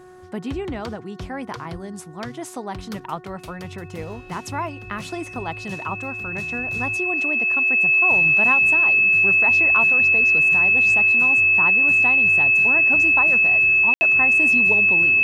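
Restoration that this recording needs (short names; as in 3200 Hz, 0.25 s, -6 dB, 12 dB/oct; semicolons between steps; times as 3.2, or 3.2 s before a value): de-hum 366.6 Hz, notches 5; notch 2600 Hz, Q 30; room tone fill 13.94–14.01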